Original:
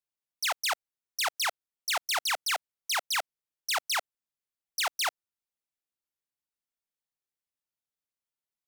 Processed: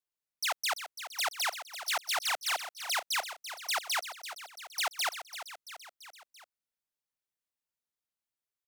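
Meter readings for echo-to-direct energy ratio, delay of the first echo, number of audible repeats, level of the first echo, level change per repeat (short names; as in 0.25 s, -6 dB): -9.0 dB, 0.338 s, 4, -11.0 dB, -4.5 dB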